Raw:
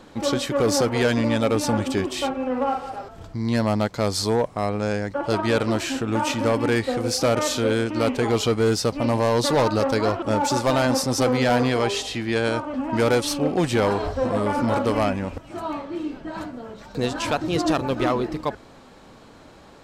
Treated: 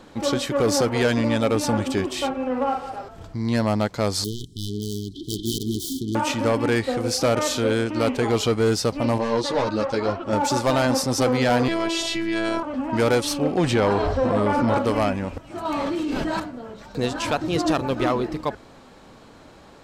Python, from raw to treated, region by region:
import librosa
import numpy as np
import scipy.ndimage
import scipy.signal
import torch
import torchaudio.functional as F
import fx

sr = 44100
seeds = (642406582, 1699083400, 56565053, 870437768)

y = fx.chain(x, sr, fx.self_delay(depth_ms=0.56),
    fx.brickwall_bandstop(low_hz=430.0, high_hz=3000.0), at=(4.24, 6.15))
y = fx.chain(y, sr, fx.lowpass(hz=6500.0, slope=12),
    fx.ensemble(), at=(9.18, 10.33))
y = fx.chain(y, sr, fx.high_shelf(hz=6600.0, db=-5.0),
    fx.robotise(hz=331.0),
    fx.env_flatten(amount_pct=70), at=(11.68, 12.63))
y = fx.chain(y, sr, fx.high_shelf(hz=7900.0, db=-12.0),
    fx.env_flatten(amount_pct=50), at=(13.58, 14.78))
y = fx.chain(y, sr, fx.high_shelf(hz=3800.0, db=9.0),
    fx.env_flatten(amount_pct=100), at=(15.65, 16.4))